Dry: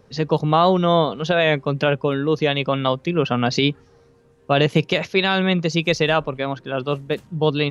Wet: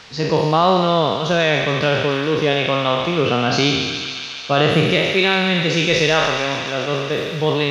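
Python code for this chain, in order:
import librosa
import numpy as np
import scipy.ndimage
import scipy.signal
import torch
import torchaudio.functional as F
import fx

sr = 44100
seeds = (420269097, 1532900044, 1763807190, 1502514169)

y = fx.spec_trails(x, sr, decay_s=1.3)
y = fx.echo_wet_highpass(y, sr, ms=142, feedback_pct=82, hz=2000.0, wet_db=-6.5)
y = fx.dmg_noise_band(y, sr, seeds[0], low_hz=690.0, high_hz=5200.0, level_db=-42.0)
y = y * librosa.db_to_amplitude(-1.0)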